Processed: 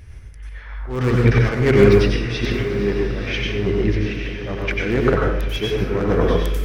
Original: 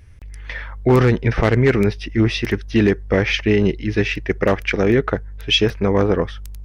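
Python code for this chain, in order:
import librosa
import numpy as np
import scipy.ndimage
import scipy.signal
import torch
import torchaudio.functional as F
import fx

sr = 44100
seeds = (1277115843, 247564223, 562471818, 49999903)

y = np.minimum(x, 2.0 * 10.0 ** (-9.0 / 20.0) - x)
y = fx.high_shelf(y, sr, hz=4500.0, db=-8.0, at=(2.42, 4.85))
y = fx.auto_swell(y, sr, attack_ms=586.0)
y = fx.echo_diffused(y, sr, ms=908, feedback_pct=55, wet_db=-11)
y = fx.rev_plate(y, sr, seeds[0], rt60_s=0.73, hf_ratio=0.75, predelay_ms=80, drr_db=-1.5)
y = y * librosa.db_to_amplitude(4.0)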